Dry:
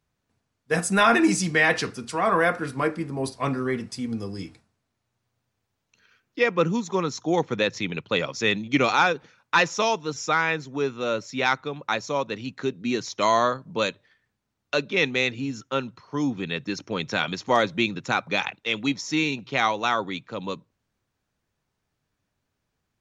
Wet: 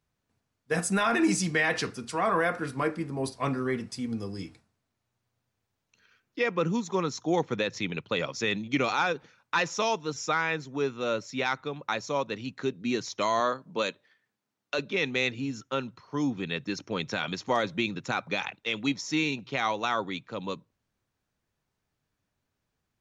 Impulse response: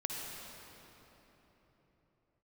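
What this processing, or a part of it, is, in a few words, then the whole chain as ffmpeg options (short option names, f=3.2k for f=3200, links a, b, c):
clipper into limiter: -filter_complex "[0:a]asoftclip=type=hard:threshold=-7dB,alimiter=limit=-12.5dB:level=0:latency=1:release=52,asettb=1/sr,asplit=3[a][b][c];[a]atrim=end=13.404[d];[b]atrim=start=13.4:end=14.79,asetpts=PTS-STARTPTS,afade=t=in:d=0.004:c=qsin,afade=t=out:st=1.386:d=0.004:c=qsin,highpass=190[e];[c]atrim=start=14.786[f];[d][e]acrossfade=d=0.004:c1=hsin:c2=qsin[g];[g][f]acrossfade=d=0.004:c1=qsin:c2=hsin,volume=-3dB"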